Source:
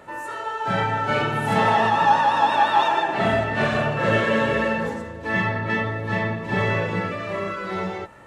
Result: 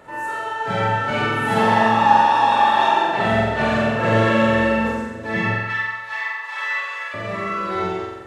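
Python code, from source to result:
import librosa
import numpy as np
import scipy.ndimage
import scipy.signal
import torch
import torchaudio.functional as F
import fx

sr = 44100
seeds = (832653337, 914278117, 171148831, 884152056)

p1 = fx.highpass(x, sr, hz=1000.0, slope=24, at=(5.54, 7.14))
p2 = p1 + fx.room_flutter(p1, sr, wall_m=7.7, rt60_s=0.96, dry=0)
y = F.gain(torch.from_numpy(p2), -1.0).numpy()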